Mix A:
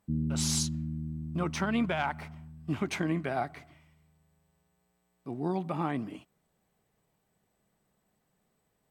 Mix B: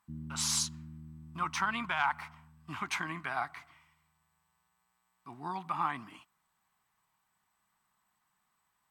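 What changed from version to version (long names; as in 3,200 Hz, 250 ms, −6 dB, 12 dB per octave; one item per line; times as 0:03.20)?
master: add low shelf with overshoot 730 Hz −11.5 dB, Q 3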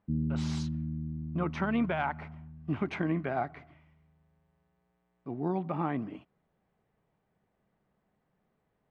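speech: add low-pass filter 2,300 Hz 12 dB per octave
master: add low shelf with overshoot 730 Hz +11.5 dB, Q 3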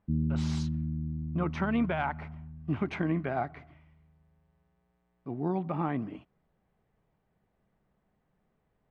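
master: add low-shelf EQ 70 Hz +10.5 dB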